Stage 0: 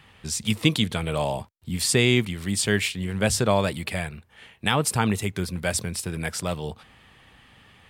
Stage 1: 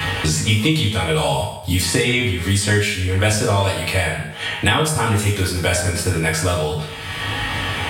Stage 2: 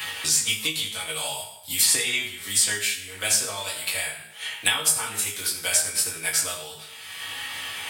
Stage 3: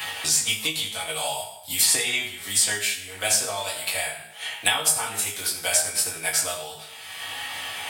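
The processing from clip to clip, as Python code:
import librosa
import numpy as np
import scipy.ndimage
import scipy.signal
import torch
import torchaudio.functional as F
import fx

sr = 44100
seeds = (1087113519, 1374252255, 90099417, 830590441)

y1 = fx.comb_fb(x, sr, f0_hz=52.0, decay_s=0.21, harmonics='all', damping=0.0, mix_pct=80)
y1 = fx.rev_fdn(y1, sr, rt60_s=0.66, lf_ratio=0.75, hf_ratio=0.85, size_ms=63.0, drr_db=-7.5)
y1 = fx.band_squash(y1, sr, depth_pct=100)
y1 = y1 * 10.0 ** (2.0 / 20.0)
y2 = fx.tilt_eq(y1, sr, slope=4.5)
y2 = fx.upward_expand(y2, sr, threshold_db=-22.0, expansion=1.5)
y2 = y2 * 10.0 ** (-8.5 / 20.0)
y3 = fx.peak_eq(y2, sr, hz=720.0, db=9.0, octaves=0.54)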